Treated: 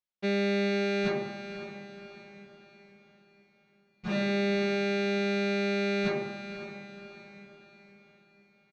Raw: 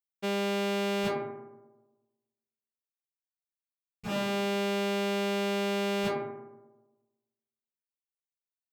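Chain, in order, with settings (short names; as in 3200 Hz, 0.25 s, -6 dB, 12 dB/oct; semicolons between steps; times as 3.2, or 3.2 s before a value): LPF 5100 Hz 24 dB/oct; comb 5.5 ms, depth 90%; on a send: diffused feedback echo 0.523 s, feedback 48%, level -10 dB; on the sum: gain -1 dB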